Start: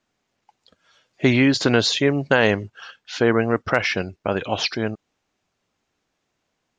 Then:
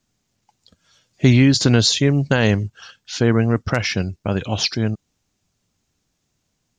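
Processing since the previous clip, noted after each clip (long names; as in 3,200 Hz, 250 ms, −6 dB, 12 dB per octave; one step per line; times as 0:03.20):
bass and treble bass +14 dB, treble +13 dB
level −3.5 dB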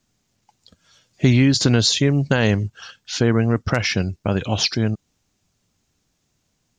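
downward compressor 1.5 to 1, threshold −20 dBFS, peak gain reduction 4.5 dB
level +2 dB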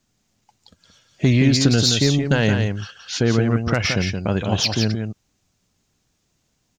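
soft clipping −6.5 dBFS, distortion −22 dB
single-tap delay 173 ms −6 dB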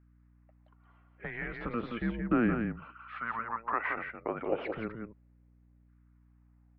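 auto-filter high-pass saw down 0.34 Hz 350–1,600 Hz
single-sideband voice off tune −230 Hz 290–2,300 Hz
mains hum 60 Hz, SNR 26 dB
level −9 dB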